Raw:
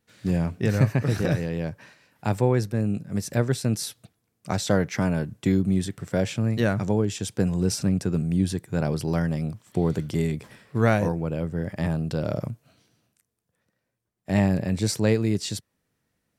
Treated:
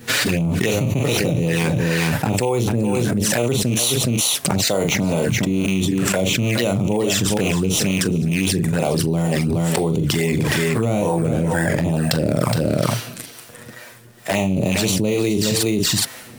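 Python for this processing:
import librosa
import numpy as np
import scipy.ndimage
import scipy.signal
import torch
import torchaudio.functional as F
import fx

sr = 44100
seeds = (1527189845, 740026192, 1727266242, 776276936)

p1 = fx.rattle_buzz(x, sr, strikes_db=-19.0, level_db=-25.0)
p2 = fx.room_early_taps(p1, sr, ms=(25, 42), db=(-15.5, -8.5))
p3 = fx.sample_hold(p2, sr, seeds[0], rate_hz=8800.0, jitter_pct=0)
p4 = p2 + F.gain(torch.from_numpy(p3), -5.0).numpy()
p5 = fx.high_shelf(p4, sr, hz=2100.0, db=7.0)
p6 = fx.harmonic_tremolo(p5, sr, hz=2.2, depth_pct=70, crossover_hz=440.0)
p7 = fx.low_shelf(p6, sr, hz=150.0, db=-10.5)
p8 = fx.env_flanger(p7, sr, rest_ms=8.4, full_db=-23.0)
p9 = p8 + fx.echo_single(p8, sr, ms=418, db=-14.5, dry=0)
p10 = fx.env_flatten(p9, sr, amount_pct=100)
y = F.gain(torch.from_numpy(p10), -1.0).numpy()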